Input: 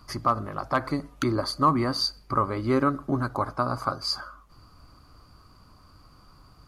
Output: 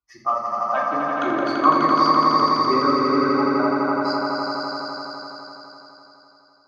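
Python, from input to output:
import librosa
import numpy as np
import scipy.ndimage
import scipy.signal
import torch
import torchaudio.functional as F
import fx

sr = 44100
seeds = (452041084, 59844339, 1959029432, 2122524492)

y = fx.bin_expand(x, sr, power=2.0)
y = scipy.signal.sosfilt(scipy.signal.butter(2, 410.0, 'highpass', fs=sr, output='sos'), y)
y = fx.air_absorb(y, sr, metres=190.0)
y = fx.echo_swell(y, sr, ms=84, loudest=5, wet_db=-4)
y = fx.room_shoebox(y, sr, seeds[0], volume_m3=790.0, walls='furnished', distance_m=3.4)
y = y * librosa.db_to_amplitude(3.0)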